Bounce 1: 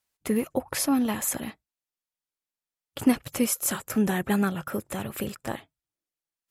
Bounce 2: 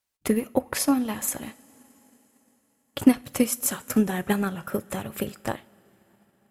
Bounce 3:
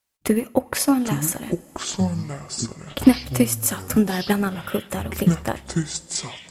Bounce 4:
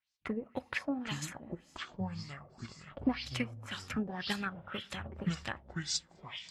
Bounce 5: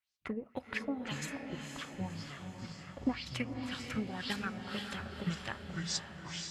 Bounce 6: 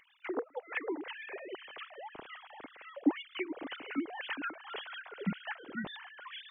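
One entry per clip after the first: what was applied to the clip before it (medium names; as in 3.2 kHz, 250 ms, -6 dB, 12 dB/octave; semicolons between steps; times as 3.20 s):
two-slope reverb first 0.29 s, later 4.1 s, from -18 dB, DRR 12 dB; transient shaper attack +7 dB, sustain -2 dB; trim -2 dB
ever faster or slower copies 670 ms, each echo -7 st, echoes 3, each echo -6 dB; trim +3.5 dB
amplifier tone stack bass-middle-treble 5-5-5; LFO low-pass sine 1.9 Hz 540–5500 Hz
echo that smears into a reverb 507 ms, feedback 47%, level -5.5 dB; trim -2 dB
formants replaced by sine waves; upward compressor, threshold -44 dBFS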